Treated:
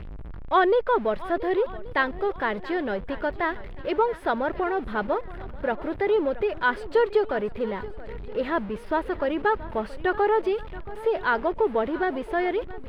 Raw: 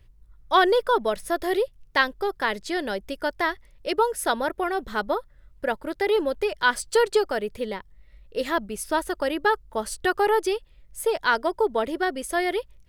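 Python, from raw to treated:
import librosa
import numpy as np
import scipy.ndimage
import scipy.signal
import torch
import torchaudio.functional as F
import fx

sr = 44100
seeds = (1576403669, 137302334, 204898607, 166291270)

y = x + 0.5 * 10.0 ** (-31.5 / 20.0) * np.sign(x)
y = fx.air_absorb(y, sr, metres=440.0)
y = fx.echo_swing(y, sr, ms=1129, ratio=1.5, feedback_pct=33, wet_db=-17.5)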